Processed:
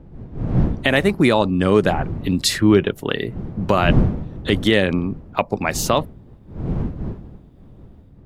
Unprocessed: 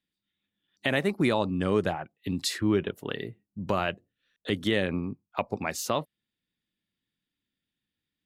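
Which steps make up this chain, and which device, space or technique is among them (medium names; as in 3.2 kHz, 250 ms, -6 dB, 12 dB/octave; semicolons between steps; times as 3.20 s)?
smartphone video outdoors (wind noise 170 Hz -35 dBFS; level rider gain up to 11 dB; trim +1 dB; AAC 128 kbps 48 kHz)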